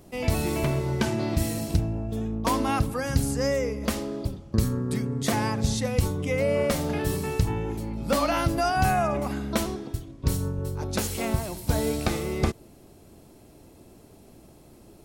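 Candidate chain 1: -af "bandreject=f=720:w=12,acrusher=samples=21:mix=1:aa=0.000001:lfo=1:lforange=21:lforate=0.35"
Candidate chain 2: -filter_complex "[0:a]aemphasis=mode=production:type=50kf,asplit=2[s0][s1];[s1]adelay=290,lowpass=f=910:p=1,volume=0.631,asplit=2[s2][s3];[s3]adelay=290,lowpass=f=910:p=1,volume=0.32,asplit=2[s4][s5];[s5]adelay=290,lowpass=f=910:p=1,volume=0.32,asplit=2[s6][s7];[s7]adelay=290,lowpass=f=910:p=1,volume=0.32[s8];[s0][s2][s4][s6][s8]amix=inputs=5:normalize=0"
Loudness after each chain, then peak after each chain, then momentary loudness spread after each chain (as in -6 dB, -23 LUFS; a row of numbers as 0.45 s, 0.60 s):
-27.0 LUFS, -24.0 LUFS; -12.0 dBFS, -8.0 dBFS; 6 LU, 6 LU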